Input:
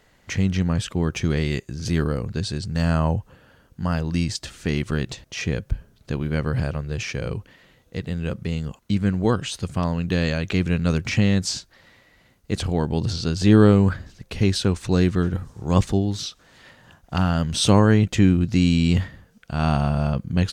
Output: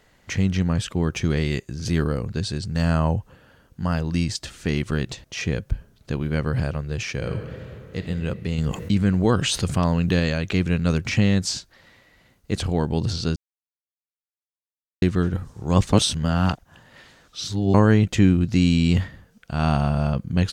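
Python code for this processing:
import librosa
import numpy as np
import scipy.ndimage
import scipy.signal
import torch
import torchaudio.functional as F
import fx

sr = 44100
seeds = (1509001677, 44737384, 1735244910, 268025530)

y = fx.reverb_throw(x, sr, start_s=7.13, length_s=0.92, rt60_s=3.0, drr_db=4.5)
y = fx.env_flatten(y, sr, amount_pct=50, at=(8.58, 10.2))
y = fx.edit(y, sr, fx.silence(start_s=13.36, length_s=1.66),
    fx.reverse_span(start_s=15.93, length_s=1.81), tone=tone)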